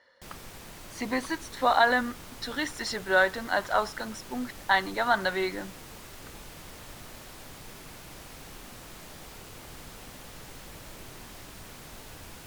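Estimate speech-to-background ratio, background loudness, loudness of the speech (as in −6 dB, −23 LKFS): 17.5 dB, −45.0 LKFS, −27.5 LKFS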